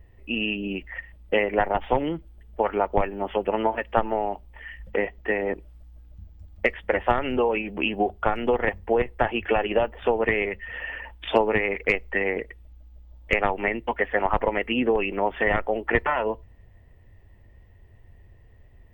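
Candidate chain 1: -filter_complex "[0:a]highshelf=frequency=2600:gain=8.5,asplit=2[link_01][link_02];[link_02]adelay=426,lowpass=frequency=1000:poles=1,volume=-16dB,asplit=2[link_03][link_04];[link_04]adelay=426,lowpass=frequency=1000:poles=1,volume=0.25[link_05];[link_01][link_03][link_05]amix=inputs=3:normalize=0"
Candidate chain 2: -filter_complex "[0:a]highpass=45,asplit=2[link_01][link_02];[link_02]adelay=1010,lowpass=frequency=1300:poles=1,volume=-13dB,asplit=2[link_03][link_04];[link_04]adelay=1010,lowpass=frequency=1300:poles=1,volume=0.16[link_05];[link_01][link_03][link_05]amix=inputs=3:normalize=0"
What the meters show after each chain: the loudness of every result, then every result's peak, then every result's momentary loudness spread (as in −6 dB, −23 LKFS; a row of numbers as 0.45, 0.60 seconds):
−24.0, −25.5 LKFS; −4.5, −6.0 dBFS; 10, 16 LU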